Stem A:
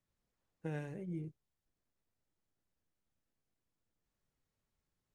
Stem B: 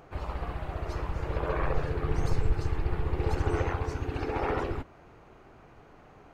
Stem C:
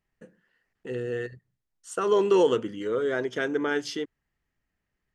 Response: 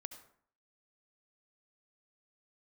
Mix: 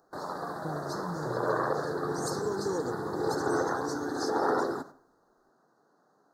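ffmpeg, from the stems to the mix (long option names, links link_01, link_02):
-filter_complex "[0:a]volume=2.5dB[link_01];[1:a]agate=range=-16dB:threshold=-43dB:ratio=16:detection=peak,highpass=frequency=180:width=0.5412,highpass=frequency=180:width=1.3066,highshelf=frequency=2100:gain=7.5,volume=0dB,asplit=2[link_02][link_03];[link_03]volume=-4dB[link_04];[2:a]bass=frequency=250:gain=12,treble=frequency=4000:gain=15,adelay=350,volume=-14.5dB[link_05];[3:a]atrim=start_sample=2205[link_06];[link_04][link_06]afir=irnorm=-1:irlink=0[link_07];[link_01][link_02][link_05][link_07]amix=inputs=4:normalize=0,asuperstop=centerf=2600:order=8:qfactor=1.1"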